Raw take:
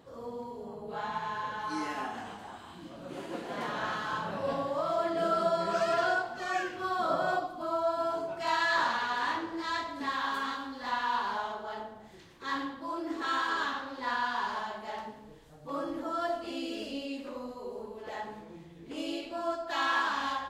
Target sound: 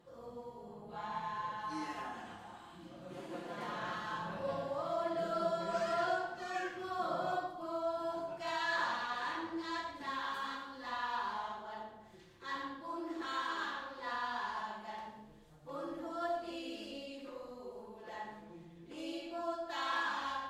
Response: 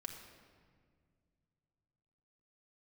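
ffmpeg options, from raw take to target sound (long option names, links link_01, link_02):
-filter_complex "[1:a]atrim=start_sample=2205,afade=type=out:start_time=0.16:duration=0.01,atrim=end_sample=7497,asetrate=32193,aresample=44100[link_01];[0:a][link_01]afir=irnorm=-1:irlink=0,volume=-5dB"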